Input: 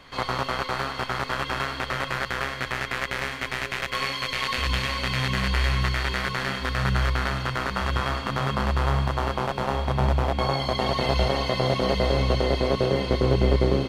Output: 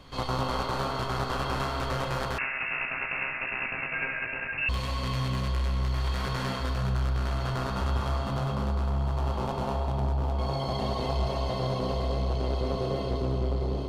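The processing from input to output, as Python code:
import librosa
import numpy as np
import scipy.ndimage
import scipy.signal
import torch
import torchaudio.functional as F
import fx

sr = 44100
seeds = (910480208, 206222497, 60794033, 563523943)

y = fx.low_shelf(x, sr, hz=220.0, db=7.5)
y = fx.comb_fb(y, sr, f0_hz=52.0, decay_s=0.38, harmonics='all', damping=0.0, mix_pct=50)
y = y + 10.0 ** (-12.5 / 20.0) * np.pad(y, (int(248 * sr / 1000.0), 0))[:len(y)]
y = 10.0 ** (-18.5 / 20.0) * np.tanh(y / 10.0 ** (-18.5 / 20.0))
y = fx.peak_eq(y, sr, hz=1900.0, db=-8.0, octaves=0.94)
y = fx.echo_banded(y, sr, ms=133, feedback_pct=80, hz=770.0, wet_db=-4.5)
y = fx.freq_invert(y, sr, carrier_hz=2700, at=(2.38, 4.69))
y = fx.rider(y, sr, range_db=4, speed_s=0.5)
y = y * 10.0 ** (-2.0 / 20.0)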